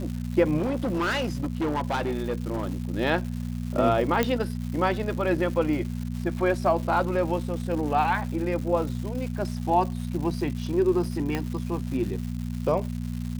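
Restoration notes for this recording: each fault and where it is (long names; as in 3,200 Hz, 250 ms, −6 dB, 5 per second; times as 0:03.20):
surface crackle 320 per second −34 dBFS
mains hum 60 Hz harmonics 4 −31 dBFS
0:00.57–0:02.73: clipping −22.5 dBFS
0:04.23: click −9 dBFS
0:11.35: click −14 dBFS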